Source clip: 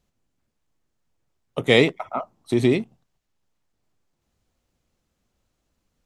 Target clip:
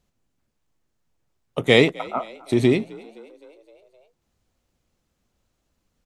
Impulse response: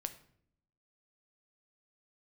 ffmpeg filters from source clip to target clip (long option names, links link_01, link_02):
-filter_complex "[0:a]asplit=6[link_01][link_02][link_03][link_04][link_05][link_06];[link_02]adelay=259,afreqshift=52,volume=-22.5dB[link_07];[link_03]adelay=518,afreqshift=104,volume=-26.8dB[link_08];[link_04]adelay=777,afreqshift=156,volume=-31.1dB[link_09];[link_05]adelay=1036,afreqshift=208,volume=-35.4dB[link_10];[link_06]adelay=1295,afreqshift=260,volume=-39.7dB[link_11];[link_01][link_07][link_08][link_09][link_10][link_11]amix=inputs=6:normalize=0,volume=1dB"